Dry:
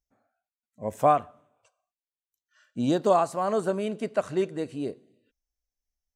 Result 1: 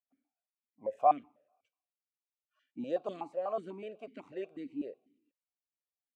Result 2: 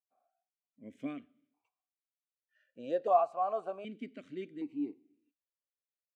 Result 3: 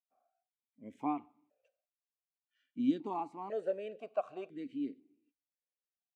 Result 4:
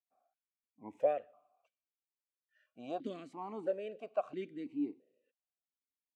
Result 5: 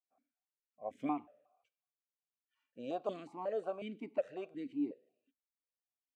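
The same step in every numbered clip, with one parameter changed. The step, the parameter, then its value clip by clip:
formant filter that steps through the vowels, speed: 8.1, 1.3, 2, 3, 5.5 Hertz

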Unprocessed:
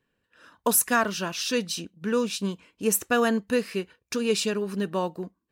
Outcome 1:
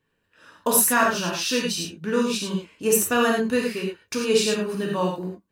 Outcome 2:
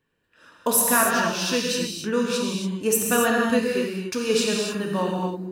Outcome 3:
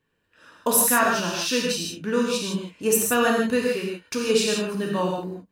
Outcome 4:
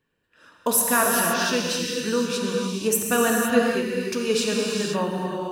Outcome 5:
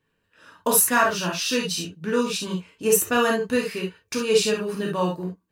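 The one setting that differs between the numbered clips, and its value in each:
reverb whose tail is shaped and stops, gate: 130, 310, 190, 540, 90 milliseconds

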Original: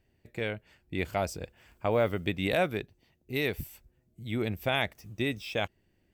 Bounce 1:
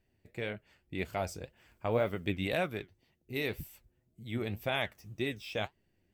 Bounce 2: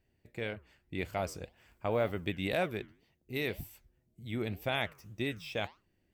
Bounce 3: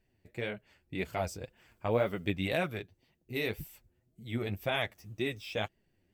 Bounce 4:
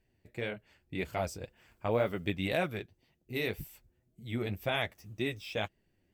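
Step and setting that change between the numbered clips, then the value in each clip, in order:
flanger, regen: +65, −87, +18, −27%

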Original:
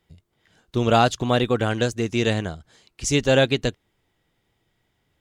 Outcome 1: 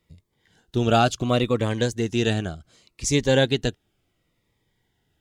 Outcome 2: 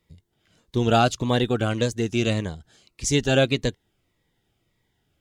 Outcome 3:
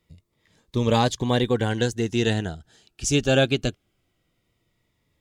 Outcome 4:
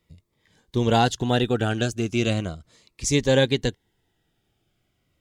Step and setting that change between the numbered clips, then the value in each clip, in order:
phaser whose notches keep moving one way, speed: 0.69, 1.7, 0.21, 0.37 Hertz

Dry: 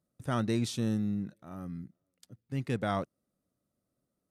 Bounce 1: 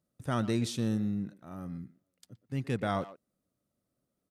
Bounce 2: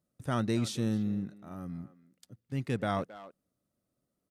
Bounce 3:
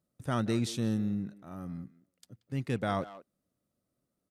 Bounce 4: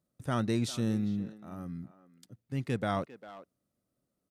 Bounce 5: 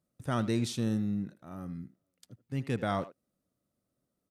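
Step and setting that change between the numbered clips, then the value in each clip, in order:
far-end echo of a speakerphone, delay time: 120, 270, 180, 400, 80 milliseconds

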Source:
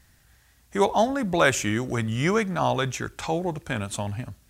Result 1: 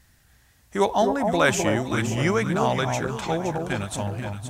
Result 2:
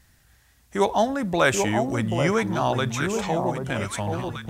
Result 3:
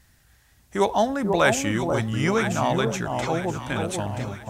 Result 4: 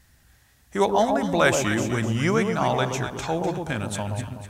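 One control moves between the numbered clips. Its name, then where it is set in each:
delay that swaps between a low-pass and a high-pass, delay time: 259, 784, 489, 125 milliseconds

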